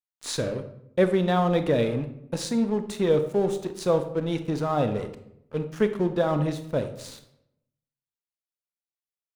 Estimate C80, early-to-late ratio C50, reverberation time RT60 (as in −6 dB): 13.5 dB, 11.0 dB, 0.75 s